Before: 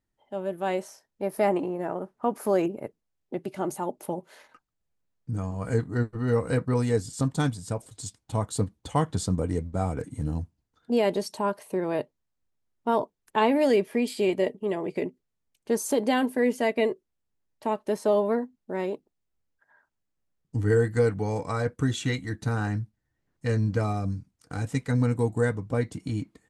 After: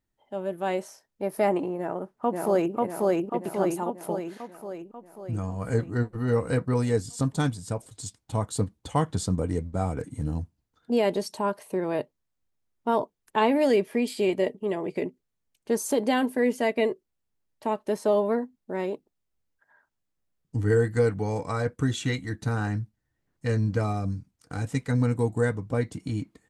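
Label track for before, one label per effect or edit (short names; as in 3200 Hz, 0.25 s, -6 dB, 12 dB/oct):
1.780000	2.750000	echo throw 0.54 s, feedback 60%, level -0.5 dB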